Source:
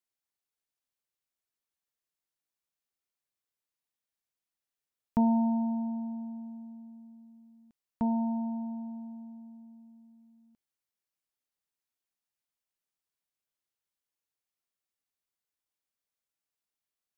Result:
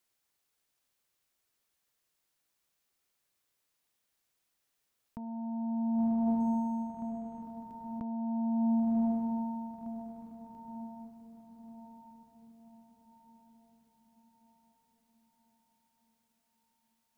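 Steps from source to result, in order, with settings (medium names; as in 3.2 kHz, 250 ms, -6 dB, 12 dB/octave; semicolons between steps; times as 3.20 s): echo that smears into a reverb 1066 ms, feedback 50%, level -14 dB; compressor with a negative ratio -37 dBFS, ratio -1; 6.40–7.42 s: decimation joined by straight lines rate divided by 6×; trim +5.5 dB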